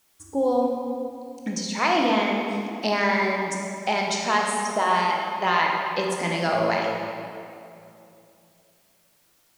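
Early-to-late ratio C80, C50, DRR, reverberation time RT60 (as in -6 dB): 2.0 dB, 1.0 dB, -0.5 dB, 2.7 s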